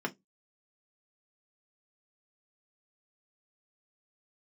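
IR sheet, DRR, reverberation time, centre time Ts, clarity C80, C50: 0.5 dB, 0.15 s, 5 ms, 35.0 dB, 25.0 dB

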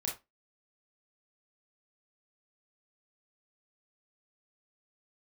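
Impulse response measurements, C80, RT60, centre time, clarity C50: 17.0 dB, 0.20 s, 27 ms, 8.0 dB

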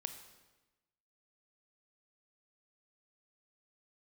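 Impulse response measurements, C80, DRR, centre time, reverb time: 11.0 dB, 7.5 dB, 17 ms, 1.1 s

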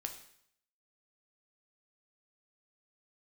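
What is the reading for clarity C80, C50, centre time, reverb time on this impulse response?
12.0 dB, 9.0 dB, 15 ms, 0.70 s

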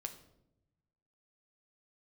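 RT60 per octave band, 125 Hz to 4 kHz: 1.6, 1.3, 1.0, 0.70, 0.55, 0.50 s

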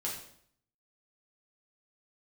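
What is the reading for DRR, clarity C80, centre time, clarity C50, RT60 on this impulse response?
-5.0 dB, 7.5 dB, 37 ms, 4.5 dB, 0.65 s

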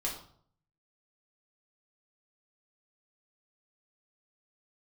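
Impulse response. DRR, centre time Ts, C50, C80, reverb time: -4.0 dB, 28 ms, 6.5 dB, 10.0 dB, 0.60 s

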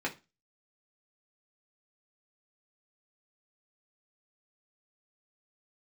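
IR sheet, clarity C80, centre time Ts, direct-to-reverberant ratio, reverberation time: 23.5 dB, 11 ms, -3.0 dB, 0.25 s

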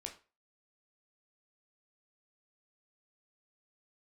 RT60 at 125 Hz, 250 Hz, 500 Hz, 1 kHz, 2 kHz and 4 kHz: 0.30, 0.30, 0.35, 0.35, 0.30, 0.30 s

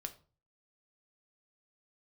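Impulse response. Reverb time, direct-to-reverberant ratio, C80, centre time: 0.40 s, 6.5 dB, 20.0 dB, 6 ms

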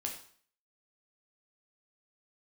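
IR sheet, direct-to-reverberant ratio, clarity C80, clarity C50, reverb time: 0.5 dB, 10.5 dB, 7.0 dB, 0.50 s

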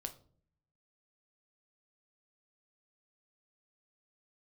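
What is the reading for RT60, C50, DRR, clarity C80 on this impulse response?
not exponential, 14.5 dB, 6.0 dB, 19.5 dB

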